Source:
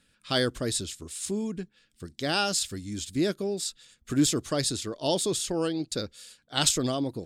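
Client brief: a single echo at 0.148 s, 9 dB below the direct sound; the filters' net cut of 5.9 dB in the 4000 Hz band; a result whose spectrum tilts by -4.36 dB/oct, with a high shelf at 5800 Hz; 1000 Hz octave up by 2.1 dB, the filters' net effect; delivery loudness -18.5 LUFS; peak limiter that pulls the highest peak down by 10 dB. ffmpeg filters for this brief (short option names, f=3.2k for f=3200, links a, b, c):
-af "equalizer=f=1k:t=o:g=3.5,equalizer=f=4k:t=o:g=-4.5,highshelf=f=5.8k:g=-8.5,alimiter=limit=-22.5dB:level=0:latency=1,aecho=1:1:148:0.355,volume=14.5dB"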